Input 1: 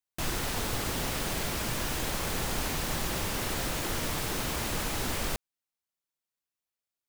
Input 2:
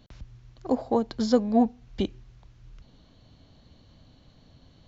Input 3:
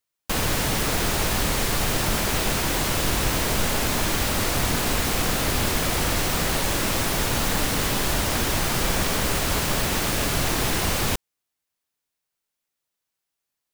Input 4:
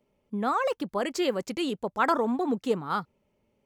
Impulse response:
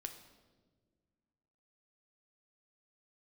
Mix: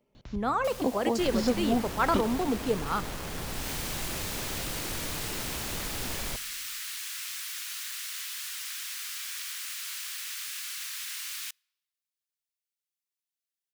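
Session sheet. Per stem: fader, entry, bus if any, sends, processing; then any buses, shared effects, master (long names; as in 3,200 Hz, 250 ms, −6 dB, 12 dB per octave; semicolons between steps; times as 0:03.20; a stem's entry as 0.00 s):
−11.5 dB, 1.00 s, send −11 dB, each half-wave held at its own peak
+2.5 dB, 0.15 s, no send, downward compressor 2.5 to 1, threshold −30 dBFS, peak gain reduction 10.5 dB
−9.5 dB, 0.35 s, send −21.5 dB, Bessel high-pass filter 2,300 Hz, order 8; automatic ducking −20 dB, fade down 1.60 s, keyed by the fourth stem
−4.5 dB, 0.00 s, send −4 dB, no processing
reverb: on, RT60 1.5 s, pre-delay 7 ms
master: no processing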